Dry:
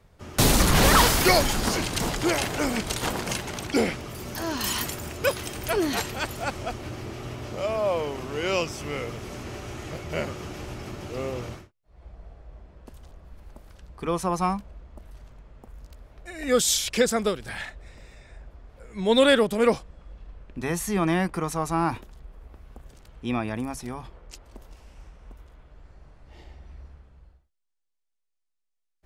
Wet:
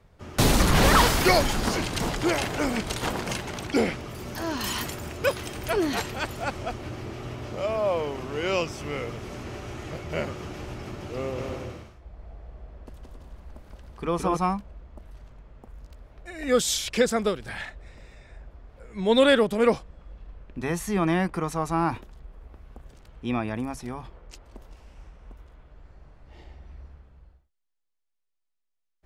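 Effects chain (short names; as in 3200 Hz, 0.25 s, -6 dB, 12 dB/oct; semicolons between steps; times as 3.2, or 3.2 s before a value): high shelf 5500 Hz -6.5 dB; 11.21–14.37 bouncing-ball echo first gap 0.17 s, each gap 0.6×, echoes 5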